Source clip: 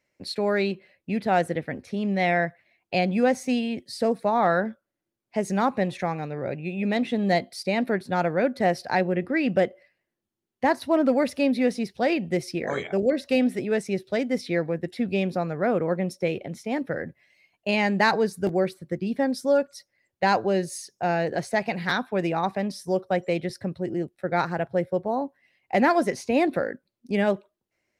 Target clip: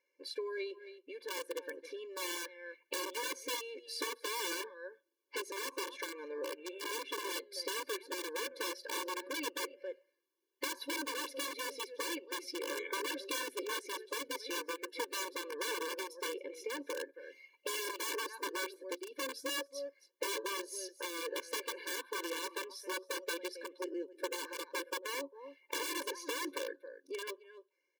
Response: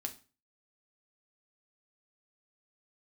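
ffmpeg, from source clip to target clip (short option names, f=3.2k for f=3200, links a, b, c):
-af "aecho=1:1:270:0.0841,dynaudnorm=f=170:g=21:m=10.5dB,equalizer=f=125:t=o:w=0.33:g=7,equalizer=f=315:t=o:w=0.33:g=-11,equalizer=f=8k:t=o:w=0.33:g=-8,aeval=exprs='(mod(4.73*val(0)+1,2)-1)/4.73':c=same,lowshelf=f=130:g=8.5,acompressor=threshold=-30dB:ratio=6,afftfilt=real='re*eq(mod(floor(b*sr/1024/300),2),1)':imag='im*eq(mod(floor(b*sr/1024/300),2),1)':win_size=1024:overlap=0.75,volume=-3dB"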